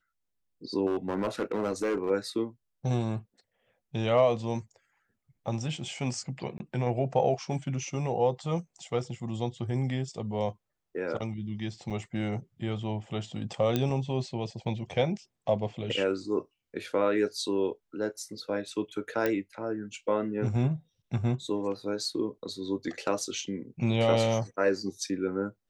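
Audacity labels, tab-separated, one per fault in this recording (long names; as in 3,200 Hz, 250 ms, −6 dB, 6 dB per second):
0.860000	2.110000	clipping −24 dBFS
6.580000	6.600000	drop-out 20 ms
11.900000	11.910000	drop-out 6.2 ms
13.760000	13.760000	click −13 dBFS
19.260000	19.260000	click −15 dBFS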